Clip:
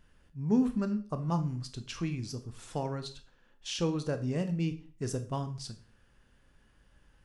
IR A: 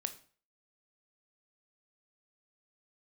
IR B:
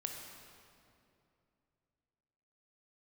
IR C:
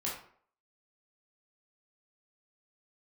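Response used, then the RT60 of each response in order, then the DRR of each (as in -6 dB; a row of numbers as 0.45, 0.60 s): A; 0.40, 2.7, 0.55 s; 8.5, 1.5, -5.5 dB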